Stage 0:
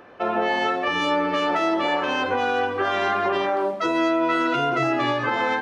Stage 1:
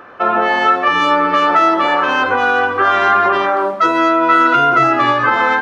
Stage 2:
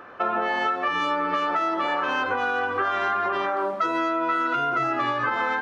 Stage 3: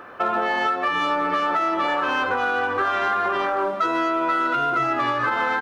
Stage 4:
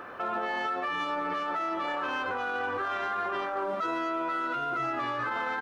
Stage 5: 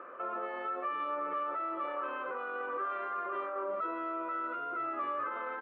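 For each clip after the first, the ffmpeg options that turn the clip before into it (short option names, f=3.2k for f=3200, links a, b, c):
-af "equalizer=f=1.3k:w=1.7:g=10.5,volume=4.5dB"
-af "acompressor=threshold=-16dB:ratio=6,volume=-5.5dB"
-filter_complex "[0:a]asplit=2[a][b];[b]asoftclip=type=hard:threshold=-23dB,volume=-8.5dB[c];[a][c]amix=inputs=2:normalize=0,acrusher=bits=11:mix=0:aa=0.000001,aecho=1:1:798:0.141"
-af "alimiter=limit=-23dB:level=0:latency=1,volume=-1.5dB"
-af "highpass=290,equalizer=f=360:t=q:w=4:g=4,equalizer=f=550:t=q:w=4:g=8,equalizer=f=800:t=q:w=4:g=-7,equalizer=f=1.2k:t=q:w=4:g=8,equalizer=f=1.7k:t=q:w=4:g=-4,lowpass=f=2.5k:w=0.5412,lowpass=f=2.5k:w=1.3066,volume=-8dB"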